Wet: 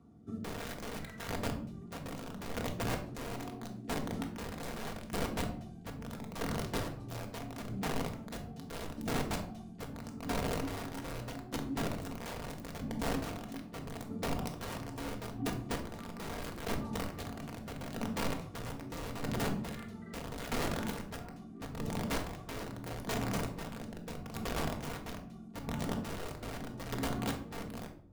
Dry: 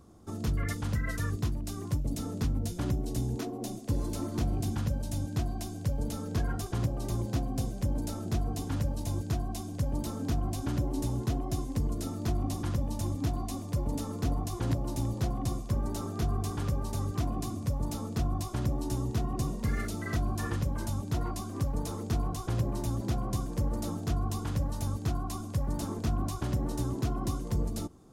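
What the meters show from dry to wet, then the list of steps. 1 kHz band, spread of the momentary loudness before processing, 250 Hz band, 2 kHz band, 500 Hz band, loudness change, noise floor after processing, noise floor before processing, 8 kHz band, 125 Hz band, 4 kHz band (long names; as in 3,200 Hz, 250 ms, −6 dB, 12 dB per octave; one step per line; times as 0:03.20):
−1.0 dB, 2 LU, −5.0 dB, +2.5 dB, −1.0 dB, −6.5 dB, −48 dBFS, −39 dBFS, −4.5 dB, −11.0 dB, +1.0 dB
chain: stylus tracing distortion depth 0.042 ms
high-pass filter 76 Hz 24 dB per octave
bass and treble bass +4 dB, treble −11 dB
notch comb filter 540 Hz
rotating-speaker cabinet horn 0.8 Hz
wrap-around overflow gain 27.5 dB
square-wave tremolo 0.78 Hz, depth 60%, duty 30%
rectangular room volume 750 cubic metres, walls furnished, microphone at 1.7 metres
level −3 dB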